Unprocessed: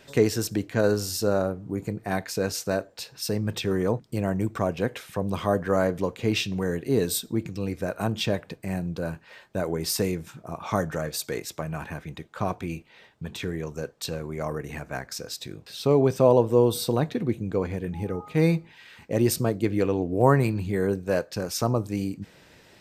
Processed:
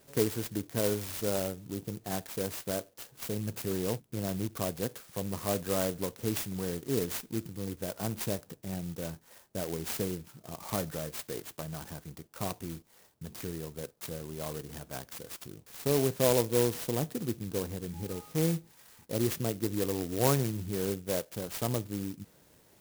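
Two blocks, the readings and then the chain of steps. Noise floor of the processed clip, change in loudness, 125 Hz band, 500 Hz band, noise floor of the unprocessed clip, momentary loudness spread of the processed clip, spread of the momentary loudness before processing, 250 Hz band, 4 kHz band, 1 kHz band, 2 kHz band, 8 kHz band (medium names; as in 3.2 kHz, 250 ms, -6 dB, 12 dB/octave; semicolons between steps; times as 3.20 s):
-62 dBFS, -7.0 dB, -7.5 dB, -8.0 dB, -55 dBFS, 13 LU, 13 LU, -7.5 dB, -7.0 dB, -9.5 dB, -9.5 dB, -3.0 dB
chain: sampling jitter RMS 0.13 ms; trim -7.5 dB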